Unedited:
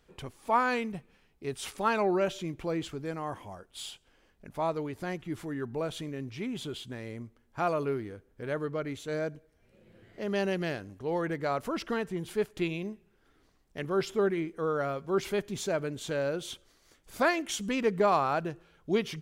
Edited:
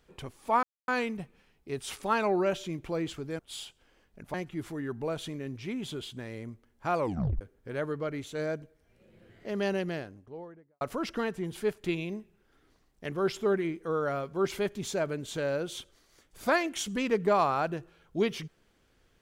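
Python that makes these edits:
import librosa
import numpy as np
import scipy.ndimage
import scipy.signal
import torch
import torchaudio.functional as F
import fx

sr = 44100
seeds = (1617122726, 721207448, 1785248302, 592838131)

y = fx.studio_fade_out(x, sr, start_s=10.32, length_s=1.22)
y = fx.edit(y, sr, fx.insert_silence(at_s=0.63, length_s=0.25),
    fx.cut(start_s=3.14, length_s=0.51),
    fx.cut(start_s=4.6, length_s=0.47),
    fx.tape_stop(start_s=7.71, length_s=0.43), tone=tone)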